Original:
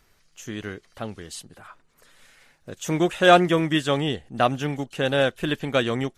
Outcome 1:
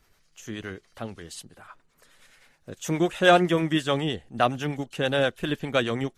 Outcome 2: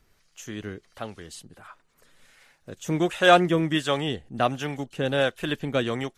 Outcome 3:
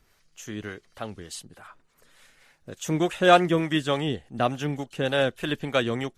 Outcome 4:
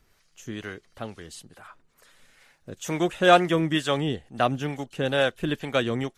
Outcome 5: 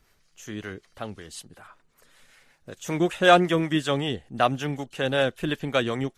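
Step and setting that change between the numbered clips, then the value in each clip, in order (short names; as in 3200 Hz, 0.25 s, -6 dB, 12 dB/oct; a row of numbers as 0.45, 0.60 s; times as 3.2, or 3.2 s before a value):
harmonic tremolo, rate: 9.6, 1.4, 3.4, 2.2, 5.3 Hz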